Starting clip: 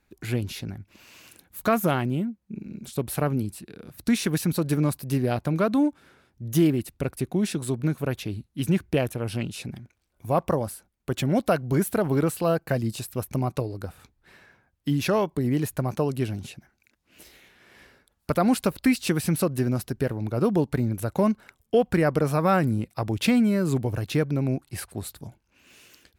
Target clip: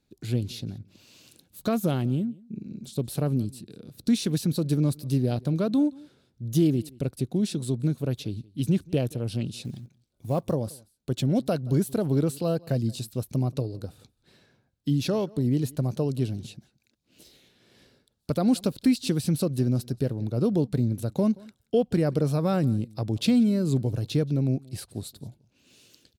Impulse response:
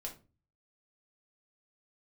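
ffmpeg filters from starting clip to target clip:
-filter_complex "[0:a]equalizer=frequency=125:width_type=o:width=1:gain=9,equalizer=frequency=250:width_type=o:width=1:gain=6,equalizer=frequency=500:width_type=o:width=1:gain=5,equalizer=frequency=1000:width_type=o:width=1:gain=-3,equalizer=frequency=2000:width_type=o:width=1:gain=-6,equalizer=frequency=4000:width_type=o:width=1:gain=10,equalizer=frequency=8000:width_type=o:width=1:gain=4,asplit=3[link_01][link_02][link_03];[link_01]afade=type=out:start_time=9.63:duration=0.02[link_04];[link_02]acrusher=bits=8:mode=log:mix=0:aa=0.000001,afade=type=in:start_time=9.63:duration=0.02,afade=type=out:start_time=10.52:duration=0.02[link_05];[link_03]afade=type=in:start_time=10.52:duration=0.02[link_06];[link_04][link_05][link_06]amix=inputs=3:normalize=0,asplit=2[link_07][link_08];[link_08]aecho=0:1:177:0.0631[link_09];[link_07][link_09]amix=inputs=2:normalize=0,volume=-8.5dB"

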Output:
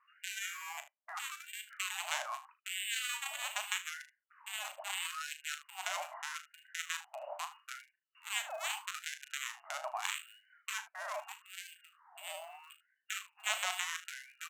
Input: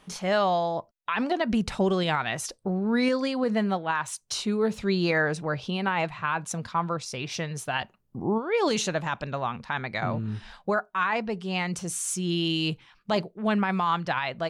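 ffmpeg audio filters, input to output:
ffmpeg -i in.wav -filter_complex "[0:a]aresample=8000,acrusher=bits=4:mode=log:mix=0:aa=0.000001,aresample=44100,asoftclip=type=hard:threshold=-30.5dB,lowpass=frequency=2600:width_type=q:width=0.5098,lowpass=frequency=2600:width_type=q:width=0.6013,lowpass=frequency=2600:width_type=q:width=0.9,lowpass=frequency=2600:width_type=q:width=2.563,afreqshift=-3000,acrossover=split=1000[link_01][link_02];[link_02]acrusher=bits=3:mix=0:aa=0.5[link_03];[link_01][link_03]amix=inputs=2:normalize=0,aecho=1:1:37|76:0.335|0.168,afftfilt=real='re*gte(b*sr/1024,550*pow(1500/550,0.5+0.5*sin(2*PI*0.79*pts/sr)))':imag='im*gte(b*sr/1024,550*pow(1500/550,0.5+0.5*sin(2*PI*0.79*pts/sr)))':win_size=1024:overlap=0.75,volume=6dB" out.wav

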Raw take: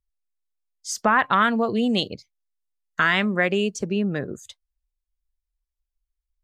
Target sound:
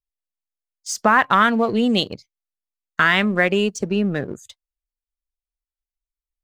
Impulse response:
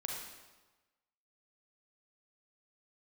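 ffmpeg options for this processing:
-filter_complex "[0:a]agate=range=-11dB:threshold=-44dB:ratio=16:detection=peak,asplit=2[link_01][link_02];[link_02]aeval=exprs='sgn(val(0))*max(abs(val(0))-0.0178,0)':channel_layout=same,volume=-5dB[link_03];[link_01][link_03]amix=inputs=2:normalize=0"

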